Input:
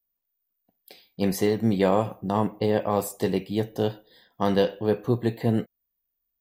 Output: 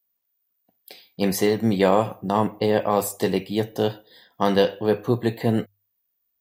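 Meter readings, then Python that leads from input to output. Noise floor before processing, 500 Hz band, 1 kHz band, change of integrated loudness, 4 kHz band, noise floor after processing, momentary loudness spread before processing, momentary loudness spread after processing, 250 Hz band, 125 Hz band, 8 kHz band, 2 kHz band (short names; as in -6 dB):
-81 dBFS, +3.0 dB, +4.5 dB, +3.0 dB, +5.5 dB, -75 dBFS, 6 LU, 7 LU, +2.0 dB, +0.5 dB, +5.5 dB, +5.0 dB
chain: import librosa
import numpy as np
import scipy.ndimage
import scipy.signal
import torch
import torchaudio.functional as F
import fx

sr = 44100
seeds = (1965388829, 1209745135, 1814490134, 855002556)

y = scipy.signal.sosfilt(scipy.signal.butter(2, 60.0, 'highpass', fs=sr, output='sos'), x)
y = fx.low_shelf(y, sr, hz=500.0, db=-4.5)
y = fx.hum_notches(y, sr, base_hz=50, count=2)
y = y * librosa.db_to_amplitude(5.5)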